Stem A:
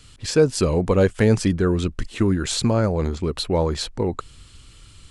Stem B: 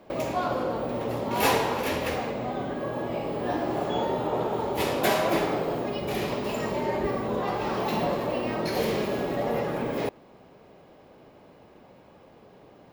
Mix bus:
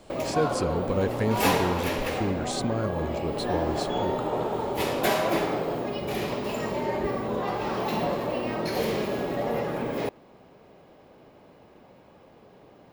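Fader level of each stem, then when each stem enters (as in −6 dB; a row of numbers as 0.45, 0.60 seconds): −9.5, −0.5 decibels; 0.00, 0.00 seconds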